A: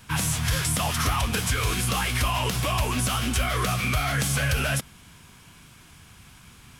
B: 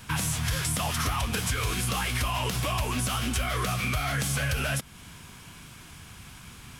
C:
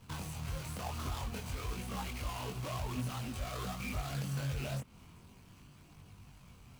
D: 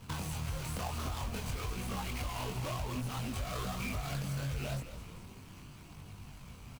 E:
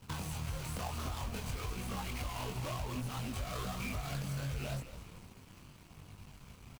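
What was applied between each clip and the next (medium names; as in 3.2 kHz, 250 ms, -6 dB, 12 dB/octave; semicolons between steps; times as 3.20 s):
compression 2:1, threshold -34 dBFS, peak gain reduction 8 dB; trim +3.5 dB
median filter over 25 samples; treble shelf 2.2 kHz +11.5 dB; chorus voices 2, 0.5 Hz, delay 22 ms, depth 1.9 ms; trim -6 dB
compression, threshold -40 dBFS, peak gain reduction 7.5 dB; frequency-shifting echo 212 ms, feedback 48%, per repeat -79 Hz, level -11 dB; trim +6 dB
crossover distortion -57.5 dBFS; trim -1 dB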